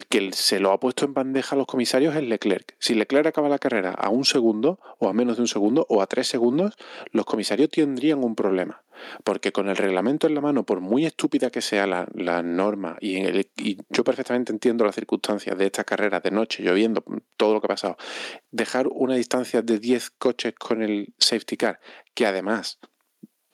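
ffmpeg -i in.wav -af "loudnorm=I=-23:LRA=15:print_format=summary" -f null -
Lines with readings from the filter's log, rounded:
Input Integrated:    -23.3 LUFS
Input True Peak:      -4.5 dBTP
Input LRA:             3.2 LU
Input Threshold:     -33.7 LUFS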